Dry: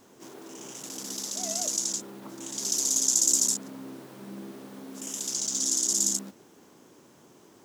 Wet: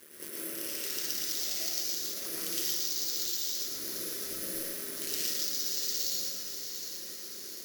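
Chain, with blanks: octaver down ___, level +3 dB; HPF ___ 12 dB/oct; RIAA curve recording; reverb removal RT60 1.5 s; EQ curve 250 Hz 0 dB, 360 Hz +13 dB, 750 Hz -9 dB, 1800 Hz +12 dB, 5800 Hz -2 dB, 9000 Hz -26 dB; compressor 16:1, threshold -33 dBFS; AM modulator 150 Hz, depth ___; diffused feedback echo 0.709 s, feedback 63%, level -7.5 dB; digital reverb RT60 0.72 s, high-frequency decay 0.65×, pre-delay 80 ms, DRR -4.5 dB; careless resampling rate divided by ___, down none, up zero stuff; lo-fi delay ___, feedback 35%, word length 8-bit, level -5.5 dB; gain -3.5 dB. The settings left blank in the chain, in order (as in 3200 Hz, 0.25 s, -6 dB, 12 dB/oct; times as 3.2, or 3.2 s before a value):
2 oct, 42 Hz, 80%, 4×, 0.113 s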